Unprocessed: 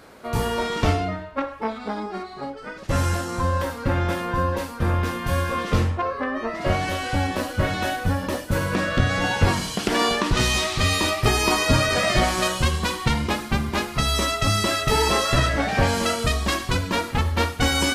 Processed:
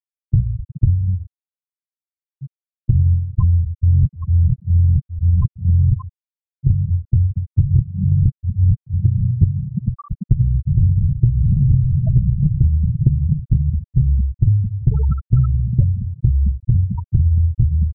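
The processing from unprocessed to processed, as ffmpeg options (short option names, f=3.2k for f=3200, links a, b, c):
-filter_complex "[0:a]asettb=1/sr,asplit=3[a][b][c];[a]atrim=end=10.674[d];[b]atrim=start=10.67:end=13.54,asetpts=PTS-STARTPTS,afade=t=in:d=0.004:c=qsin,afade=t=out:st=2.866:d=0.004:c=qsin,acrusher=samples=39:mix=1:aa=0.000001:lfo=1:lforange=39:lforate=1.3[e];[c]atrim=start=13.536[f];[d][e]acrossfade=d=0.004:c1=hsin:c2=qsin[g];[g][f]acrossfade=d=0.004:c1=qsin:c2=hsin,asplit=5[h][i][j][k][l];[h]atrim=end=3.832[m];[i]atrim=start=3.828:end=5.962,asetpts=PTS-STARTPTS,areverse[n];[j]atrim=start=5.958:end=7.742[o];[k]atrim=start=7.738:end=9.052,asetpts=PTS-STARTPTS,areverse[p];[l]atrim=start=9.048[q];[m][n]acrossfade=d=0.004:c1=hsin:c2=hsin[r];[r][o]acrossfade=d=0.004:c1=hsin:c2=hsin[s];[s][p]acrossfade=d=0.004:c1=hsin:c2=hsin[t];[t][q]acrossfade=d=0.004:c1=hsin:c2=hsin,lowshelf=f=190:t=q:w=3:g=13,afftfilt=real='re*gte(hypot(re,im),0.631)':imag='im*gte(hypot(re,im),0.631)':win_size=1024:overlap=0.75,acompressor=threshold=-11dB:ratio=6"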